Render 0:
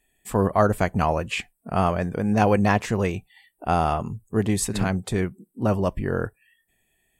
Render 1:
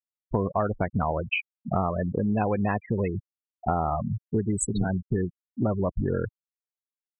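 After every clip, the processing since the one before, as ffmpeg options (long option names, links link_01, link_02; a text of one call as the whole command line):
ffmpeg -i in.wav -af "afftfilt=real='re*gte(hypot(re,im),0.112)':imag='im*gte(hypot(re,im),0.112)':win_size=1024:overlap=0.75,equalizer=frequency=6600:width=3.2:gain=10.5,acompressor=threshold=-28dB:ratio=6,volume=5.5dB" out.wav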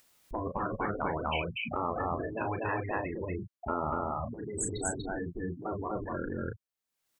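ffmpeg -i in.wav -af "aecho=1:1:34.99|242|277:0.355|0.794|0.282,afftfilt=real='re*lt(hypot(re,im),0.251)':imag='im*lt(hypot(re,im),0.251)':win_size=1024:overlap=0.75,acompressor=mode=upward:threshold=-38dB:ratio=2.5,volume=-2.5dB" out.wav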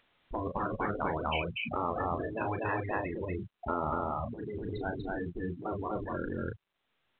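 ffmpeg -i in.wav -ar 8000 -c:a pcm_mulaw out.wav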